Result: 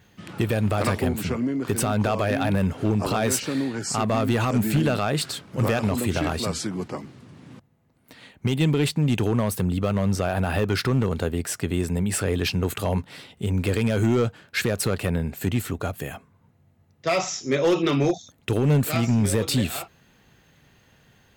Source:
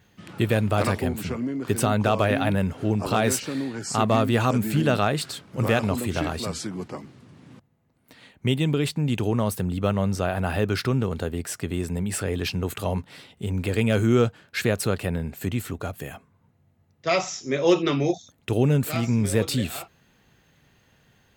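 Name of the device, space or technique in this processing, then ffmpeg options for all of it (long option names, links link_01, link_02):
limiter into clipper: -af "alimiter=limit=-13.5dB:level=0:latency=1:release=84,asoftclip=type=hard:threshold=-17.5dB,volume=3dB"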